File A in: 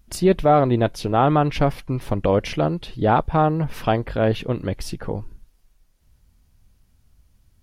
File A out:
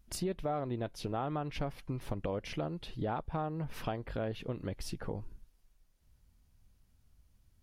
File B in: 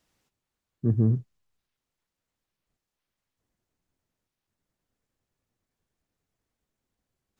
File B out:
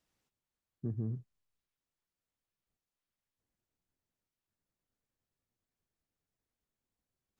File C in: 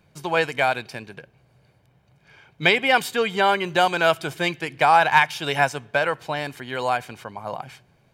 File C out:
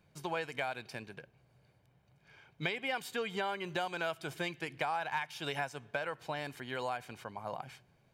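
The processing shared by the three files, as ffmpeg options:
-af "acompressor=threshold=-25dB:ratio=4,volume=-8.5dB"

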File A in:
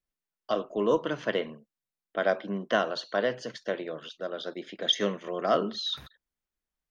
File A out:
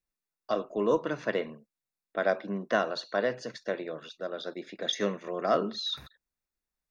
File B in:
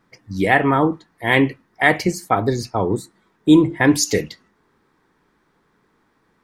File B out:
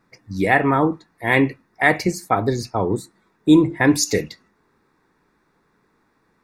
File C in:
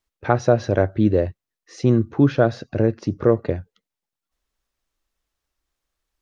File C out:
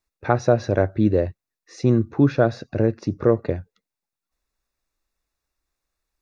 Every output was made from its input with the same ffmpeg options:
-af "asuperstop=centerf=3100:order=4:qfactor=6.5,volume=-1dB"

